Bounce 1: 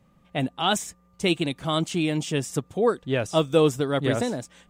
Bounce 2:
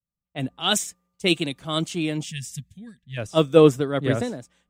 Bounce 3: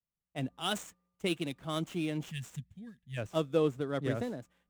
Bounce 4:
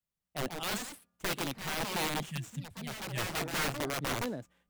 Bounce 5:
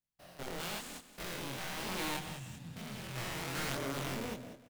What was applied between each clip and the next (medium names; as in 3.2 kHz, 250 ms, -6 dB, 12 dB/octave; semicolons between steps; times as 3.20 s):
time-frequency box 2.25–3.17 s, 250–1600 Hz -27 dB; dynamic bell 860 Hz, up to -5 dB, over -39 dBFS, Q 2.6; three bands expanded up and down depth 100%
median filter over 9 samples; compression 2:1, threshold -25 dBFS, peak gain reduction 9.5 dB; trim -6 dB
in parallel at 0 dB: peak limiter -23 dBFS, peak gain reduction 6.5 dB; on the sum: integer overflow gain 23 dB; ever faster or slower copies 199 ms, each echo +3 st, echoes 2, each echo -6 dB; trim -4.5 dB
spectrogram pixelated in time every 200 ms; chorus voices 2, 0.52 Hz, delay 23 ms, depth 1.1 ms; feedback delay 192 ms, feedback 29%, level -13 dB; trim +1 dB